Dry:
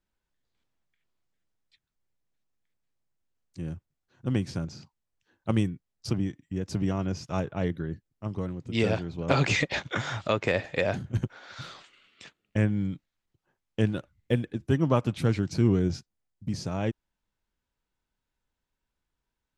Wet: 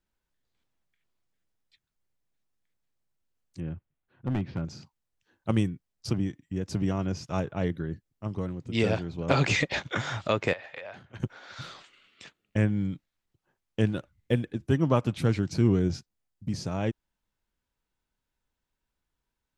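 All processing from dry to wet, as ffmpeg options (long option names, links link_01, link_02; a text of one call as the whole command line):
ffmpeg -i in.wav -filter_complex "[0:a]asettb=1/sr,asplit=3[link_01][link_02][link_03];[link_01]atrim=end=3.604[link_04];[link_02]atrim=start=3.6:end=4.65,asetpts=PTS-STARTPTS,afade=type=in:duration=0.004:curve=qsin,afade=type=out:start_time=1.046:duration=0.004:curve=qsin,lowpass=frequency=3100:width=0.5412,lowpass=frequency=3100:width=1.3066,asoftclip=type=hard:threshold=-23dB[link_05];[link_03]atrim=start=4.646[link_06];[link_04][link_05]acrossfade=duration=0.004:curve1=hsin:curve2=qsin[link_07];[link_07][link_06]acrossfade=duration=0.004:curve1=qsin:curve2=hsin,asettb=1/sr,asplit=3[link_08][link_09][link_10];[link_08]atrim=end=10.534[link_11];[link_09]atrim=start=10.53:end=11.2,asetpts=PTS-STARTPTS,afade=type=in:duration=0.004:curve=qsin,afade=type=out:start_time=0.666:duration=0.004:curve=qsin,acrossover=split=550 4200:gain=0.126 1 0.126[link_12][link_13][link_14];[link_12][link_13][link_14]amix=inputs=3:normalize=0,acompressor=threshold=-36dB:ratio=12:attack=3.2:release=140:knee=1:detection=peak[link_15];[link_10]atrim=start=11.196[link_16];[link_11][link_15]acrossfade=duration=0.004:curve1=hsin:curve2=qsin[link_17];[link_17][link_16]acrossfade=duration=0.004:curve1=qsin:curve2=hsin" out.wav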